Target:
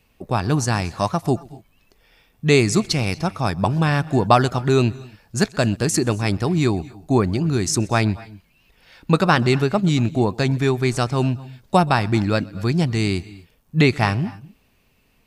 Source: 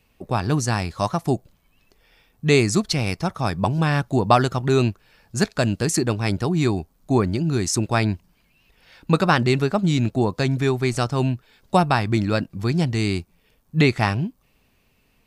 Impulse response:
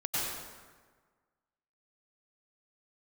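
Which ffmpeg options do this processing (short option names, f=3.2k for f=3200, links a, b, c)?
-filter_complex "[0:a]asplit=2[a][b];[1:a]atrim=start_sample=2205,atrim=end_sample=6174,adelay=126[c];[b][c]afir=irnorm=-1:irlink=0,volume=-23.5dB[d];[a][d]amix=inputs=2:normalize=0,volume=1.5dB"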